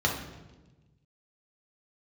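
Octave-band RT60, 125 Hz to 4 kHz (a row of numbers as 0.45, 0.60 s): 1.9, 1.6, 1.3, 1.0, 0.95, 0.95 s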